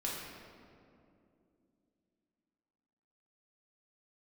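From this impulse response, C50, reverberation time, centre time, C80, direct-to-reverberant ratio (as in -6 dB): 0.0 dB, 2.6 s, 0.106 s, 1.5 dB, -5.0 dB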